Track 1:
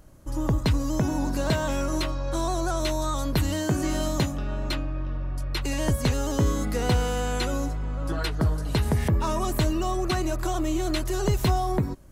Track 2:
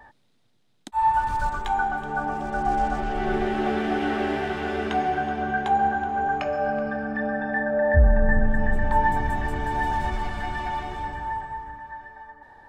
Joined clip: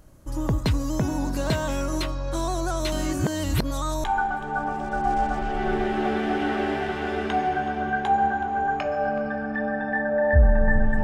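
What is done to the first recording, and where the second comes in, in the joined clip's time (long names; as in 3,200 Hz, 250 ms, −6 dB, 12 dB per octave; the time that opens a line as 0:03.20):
track 1
0:02.92–0:04.04: reverse
0:04.04: continue with track 2 from 0:01.65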